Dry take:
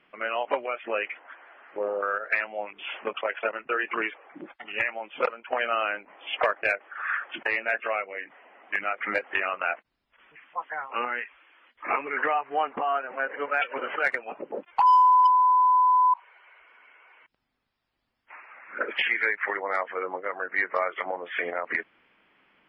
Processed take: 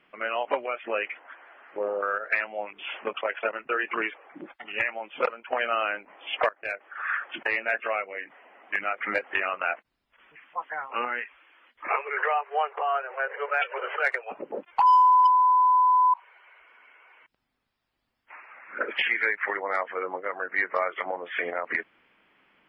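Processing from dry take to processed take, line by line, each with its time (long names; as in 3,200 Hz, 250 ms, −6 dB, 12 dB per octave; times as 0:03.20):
0:06.49–0:06.99: fade in, from −23.5 dB
0:11.88–0:14.31: Butterworth high-pass 380 Hz 96 dB per octave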